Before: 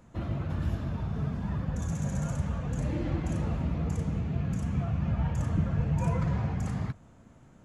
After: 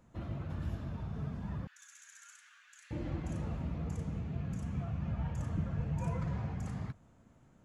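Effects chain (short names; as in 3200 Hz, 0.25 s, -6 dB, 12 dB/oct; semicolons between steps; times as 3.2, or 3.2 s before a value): 1.67–2.91 Chebyshev high-pass 1500 Hz, order 4; gain -7.5 dB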